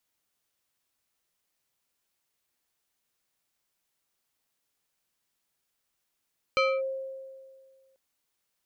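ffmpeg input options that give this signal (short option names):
-f lavfi -i "aevalsrc='0.106*pow(10,-3*t/1.88)*sin(2*PI*533*t+1.4*clip(1-t/0.25,0,1)*sin(2*PI*3.39*533*t))':d=1.39:s=44100"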